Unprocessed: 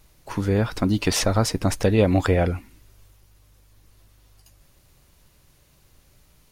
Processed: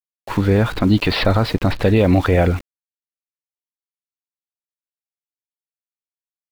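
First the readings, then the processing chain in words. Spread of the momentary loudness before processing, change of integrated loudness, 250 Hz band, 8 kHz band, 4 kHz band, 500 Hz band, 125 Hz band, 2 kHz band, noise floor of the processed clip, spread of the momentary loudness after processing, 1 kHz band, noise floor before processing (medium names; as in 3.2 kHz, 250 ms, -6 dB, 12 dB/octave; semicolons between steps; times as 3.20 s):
8 LU, +5.0 dB, +5.5 dB, under -10 dB, +4.0 dB, +4.5 dB, +5.5 dB, +6.0 dB, under -85 dBFS, 6 LU, +5.0 dB, -58 dBFS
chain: elliptic low-pass 4.3 kHz; peak limiter -13.5 dBFS, peak gain reduction 7 dB; small samples zeroed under -40.5 dBFS; trim +8.5 dB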